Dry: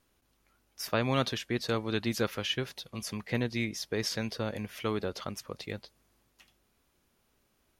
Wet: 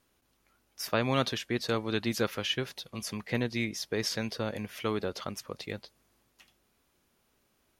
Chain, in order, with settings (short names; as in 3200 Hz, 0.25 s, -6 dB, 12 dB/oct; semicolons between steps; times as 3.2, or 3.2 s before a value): low shelf 86 Hz -5.5 dB; gain +1 dB